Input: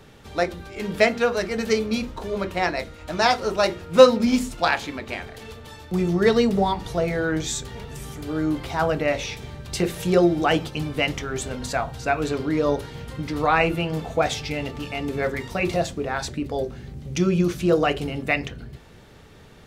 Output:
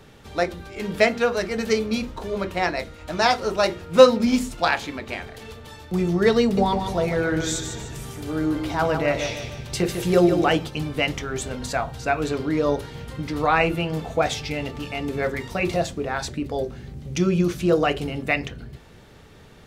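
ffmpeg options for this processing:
-filter_complex "[0:a]asettb=1/sr,asplit=3[s0][s1][s2];[s0]atrim=end=6.424[s3];[s1]atrim=start=6.42:end=10.5,asetpts=PTS-STARTPTS,afade=t=in:d=0.004:c=qsin,afade=t=out:st=4.076:d=0.004:c=qsin,aecho=1:1:150|300|450|600|750:0.447|0.188|0.0788|0.0331|0.0139,atrim=end_sample=179928[s4];[s2]atrim=start=10.496[s5];[s3][s4]acrossfade=d=0.004:c1=hsin:c2=qsin[s6];[s6][s5]acrossfade=d=0.004:c1=qsin:c2=hsin"

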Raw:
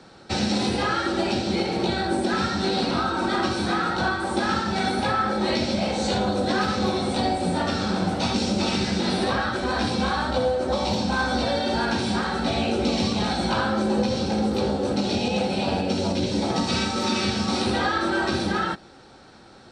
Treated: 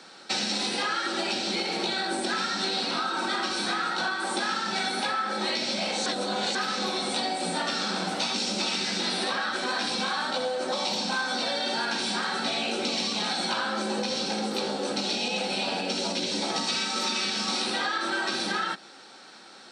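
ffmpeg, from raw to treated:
-filter_complex "[0:a]asplit=3[s0][s1][s2];[s0]atrim=end=6.062[s3];[s1]atrim=start=6.058:end=6.552,asetpts=PTS-STARTPTS,areverse[s4];[s2]atrim=start=6.548[s5];[s3][s4]acrossfade=d=0.004:c1=hsin:c2=hsin[s6];[s6][s5]acrossfade=d=0.004:c1=hsin:c2=hsin,highpass=f=180:w=0.5412,highpass=f=180:w=1.3066,tiltshelf=f=970:g=-6.5,acompressor=threshold=0.0562:ratio=6"

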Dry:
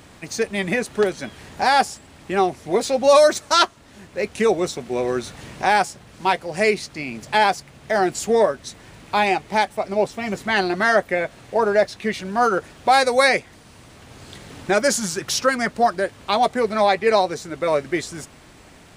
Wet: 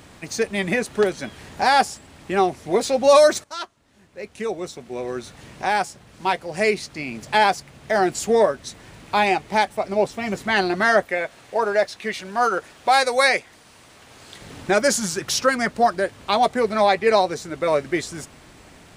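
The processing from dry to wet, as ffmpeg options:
-filter_complex "[0:a]asettb=1/sr,asplit=3[s0][s1][s2];[s0]atrim=end=11.054[s3];[s1]atrim=start=11.05:end=14.41,asetpts=PTS-STARTPTS,afade=t=in:d=0.004:c=qsin,afade=t=out:st=3.356:d=0.004:c=qsin,lowshelf=f=310:g=-11[s4];[s2]atrim=start=14.406[s5];[s3][s4]acrossfade=d=0.004:c1=hsin:c2=qsin[s6];[s6][s5]acrossfade=d=0.004:c1=qsin:c2=hsin,asplit=2[s7][s8];[s7]atrim=end=3.44,asetpts=PTS-STARTPTS,afade=t=out:st=3.436:d=0.004:c=hsin:silence=0.133352[s9];[s8]atrim=start=3.44,asetpts=PTS-STARTPTS,afade=t=in:d=3.9:silence=0.133352[s10];[s9][s10]concat=n=2:v=0:a=1"

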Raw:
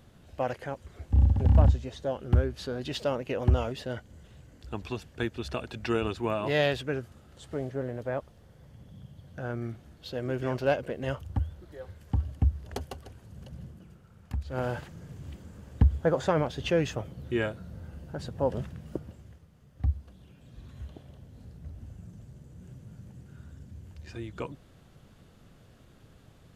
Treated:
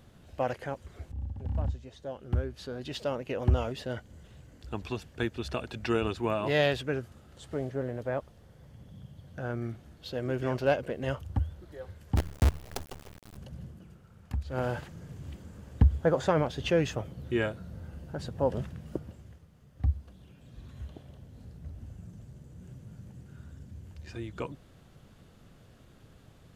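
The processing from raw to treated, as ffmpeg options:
-filter_complex "[0:a]asettb=1/sr,asplit=3[s0][s1][s2];[s0]atrim=end=12.164[s3];[s1]atrim=start=12.16:end=13.37,asetpts=PTS-STARTPTS,afade=t=in:d=0.004:c=qsin,afade=t=out:st=1.206:d=0.004:c=qsin,acrusher=bits=5:dc=4:mix=0:aa=0.000001[s4];[s2]atrim=start=13.366[s5];[s3][s4]acrossfade=d=0.004:c1=hsin:c2=qsin[s6];[s6][s5]acrossfade=d=0.004:c1=qsin:c2=hsin,asplit=2[s7][s8];[s7]atrim=end=1.12,asetpts=PTS-STARTPTS,afade=t=out:st=1.116:d=0.004:c=hsin:silence=0.125893[s9];[s8]atrim=start=1.12,asetpts=PTS-STARTPTS,afade=t=in:d=2.92:silence=0.125893[s10];[s9][s10]concat=n=2:v=0:a=1"

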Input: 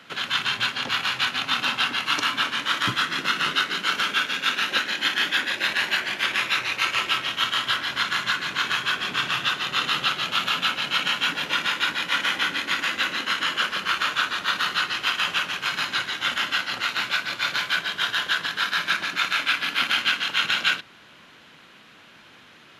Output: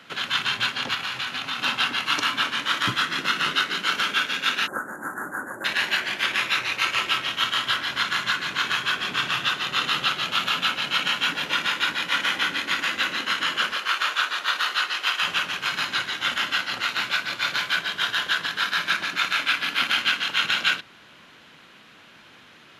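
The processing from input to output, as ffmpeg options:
-filter_complex "[0:a]asettb=1/sr,asplit=3[s0][s1][s2];[s0]atrim=end=0.944[s3];[s1]atrim=start=0.94:end=1.62,asetpts=PTS-STARTPTS,afade=t=in:d=0.004:c=qsin,afade=t=out:st=0.676:d=0.004:c=qsin,acompressor=threshold=0.0501:ratio=3:attack=3.2:release=140:knee=1:detection=peak[s4];[s2]atrim=start=1.616[s5];[s3][s4]acrossfade=d=0.004:c1=hsin:c2=qsin[s6];[s6][s5]acrossfade=d=0.004:c1=qsin:c2=hsin,asplit=3[s7][s8][s9];[s7]afade=t=out:st=4.66:d=0.02[s10];[s8]asuperstop=centerf=3500:order=12:qfactor=0.57,afade=t=in:st=4.66:d=0.02,afade=t=out:st=5.64:d=0.02[s11];[s9]afade=t=in:st=5.64:d=0.02[s12];[s10][s11][s12]amix=inputs=3:normalize=0,asettb=1/sr,asplit=3[s13][s14][s15];[s13]atrim=end=13.754[s16];[s14]atrim=start=13.75:end=15.23,asetpts=PTS-STARTPTS,afade=t=in:d=0.004:c=qsin,afade=t=out:st=1.476:d=0.004:c=qsin,highpass=450[s17];[s15]atrim=start=15.226[s18];[s16][s17]acrossfade=d=0.004:c1=hsin:c2=qsin[s19];[s19][s18]acrossfade=d=0.004:c1=qsin:c2=hsin"

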